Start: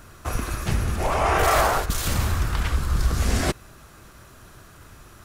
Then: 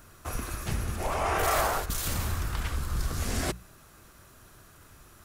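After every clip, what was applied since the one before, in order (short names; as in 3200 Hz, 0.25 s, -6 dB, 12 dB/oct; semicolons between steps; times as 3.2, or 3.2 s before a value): high shelf 8700 Hz +7 dB; notches 60/120/180 Hz; gain -7 dB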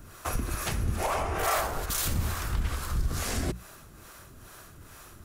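compressor, threshold -30 dBFS, peak gain reduction 8.5 dB; harmonic tremolo 2.3 Hz, depth 70%, crossover 400 Hz; gain +8 dB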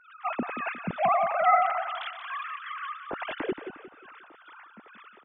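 sine-wave speech; feedback echo 0.178 s, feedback 39%, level -9.5 dB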